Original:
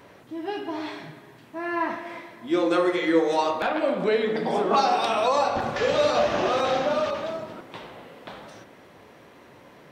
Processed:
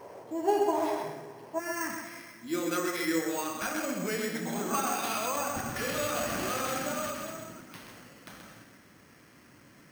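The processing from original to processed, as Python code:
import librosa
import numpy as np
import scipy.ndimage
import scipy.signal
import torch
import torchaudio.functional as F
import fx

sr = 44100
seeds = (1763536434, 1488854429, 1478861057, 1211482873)

y = np.repeat(scipy.signal.resample_poly(x, 1, 6), 6)[:len(x)]
y = fx.band_shelf(y, sr, hz=620.0, db=fx.steps((0.0, 10.5), (1.58, -9.0)), octaves=1.7)
y = y + 10.0 ** (-5.5 / 20.0) * np.pad(y, (int(129 * sr / 1000.0), 0))[:len(y)]
y = y * librosa.db_to_amplitude(-4.5)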